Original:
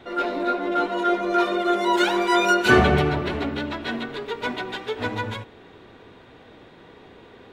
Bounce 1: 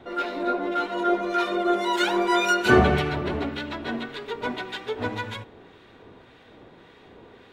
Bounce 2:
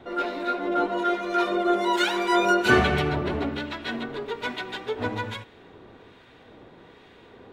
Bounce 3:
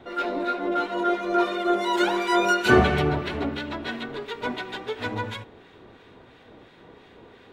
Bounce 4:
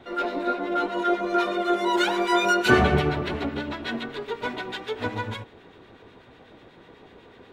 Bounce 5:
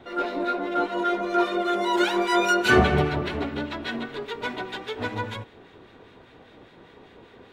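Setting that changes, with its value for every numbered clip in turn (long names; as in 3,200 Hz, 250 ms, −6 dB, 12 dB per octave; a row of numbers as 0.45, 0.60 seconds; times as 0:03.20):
two-band tremolo in antiphase, speed: 1.8, 1.2, 2.9, 8.1, 5 Hertz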